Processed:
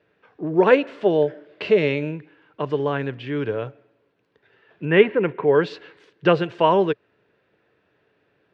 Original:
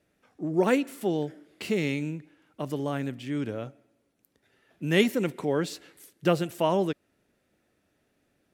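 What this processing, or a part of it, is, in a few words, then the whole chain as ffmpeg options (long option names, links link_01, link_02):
guitar cabinet: -filter_complex "[0:a]asettb=1/sr,asplit=3[link_01][link_02][link_03];[link_01]atrim=end=4.854[link_04];[link_02]atrim=start=4.85:end=5.55,asetpts=PTS-STARTPTS,afade=type=in:duration=0.004:curve=qsin,afade=type=out:start_time=0.696:duration=0.004:curve=qsin,lowpass=frequency=2600:width=0.5412,lowpass=frequency=2600:width=1.3066[link_05];[link_03]atrim=start=5.546[link_06];[link_04][link_05]acrossfade=duration=0.004:curve1=hsin:curve2=qsin[link_07];[link_07][link_06]acrossfade=duration=0.004:curve1=qsin:curve2=hsin,highpass=89,equalizer=frequency=120:width_type=q:width=4:gain=4,equalizer=frequency=240:width_type=q:width=4:gain=-7,equalizer=frequency=440:width_type=q:width=4:gain=9,equalizer=frequency=1000:width_type=q:width=4:gain=8,equalizer=frequency=1600:width_type=q:width=4:gain=7,equalizer=frequency=2700:width_type=q:width=4:gain=4,lowpass=frequency=4100:width=0.5412,lowpass=frequency=4100:width=1.3066,asettb=1/sr,asplit=3[link_08][link_09][link_10];[link_08]atrim=end=0.714[link_11];[link_09]atrim=start=0.71:end=2.15,asetpts=PTS-STARTPTS,afade=type=in:duration=0.004:curve=qsin,afade=type=out:start_time=1.436:duration=0.004:curve=qsin,equalizer=frequency=600:width=6.8:gain=13[link_12];[link_10]atrim=start=2.146[link_13];[link_11][link_12]acrossfade=duration=0.004:curve1=hsin:curve2=qsin[link_14];[link_14][link_13]acrossfade=duration=0.004:curve1=qsin:curve2=hsin,volume=4dB"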